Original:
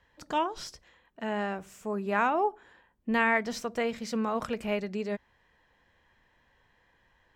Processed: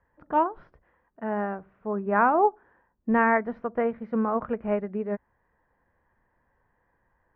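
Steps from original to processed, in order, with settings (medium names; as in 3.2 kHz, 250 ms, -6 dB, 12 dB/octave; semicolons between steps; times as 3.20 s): low-pass 1.6 kHz 24 dB/octave; upward expansion 1.5:1, over -41 dBFS; trim +7 dB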